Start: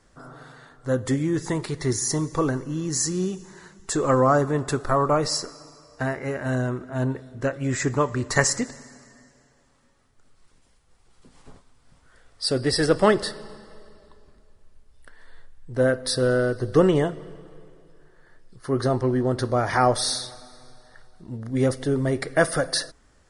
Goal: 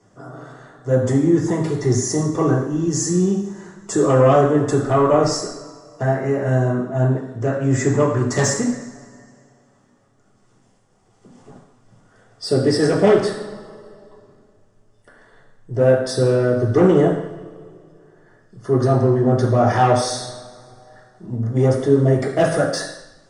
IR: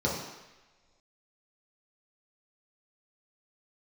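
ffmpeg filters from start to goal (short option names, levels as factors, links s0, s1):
-filter_complex "[0:a]aeval=exprs='0.668*sin(PI/2*2.82*val(0)/0.668)':c=same[s0];[1:a]atrim=start_sample=2205,asetrate=61740,aresample=44100[s1];[s0][s1]afir=irnorm=-1:irlink=0,volume=0.133"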